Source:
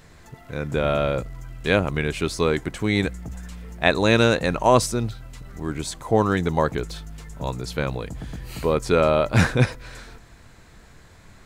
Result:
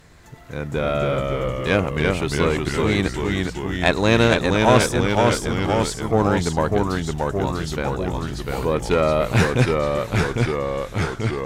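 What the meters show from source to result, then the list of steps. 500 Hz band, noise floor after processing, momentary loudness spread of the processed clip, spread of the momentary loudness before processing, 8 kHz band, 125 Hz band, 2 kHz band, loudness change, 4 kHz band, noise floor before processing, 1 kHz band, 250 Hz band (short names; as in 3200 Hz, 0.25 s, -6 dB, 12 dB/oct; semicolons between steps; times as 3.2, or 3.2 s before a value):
+2.5 dB, -35 dBFS, 8 LU, 18 LU, +2.5 dB, +3.5 dB, +2.5 dB, +2.0 dB, +3.0 dB, -49 dBFS, +3.0 dB, +3.5 dB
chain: rattling part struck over -19 dBFS, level -17 dBFS; added harmonics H 4 -19 dB, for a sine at -1 dBFS; echoes that change speed 0.235 s, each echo -1 st, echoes 3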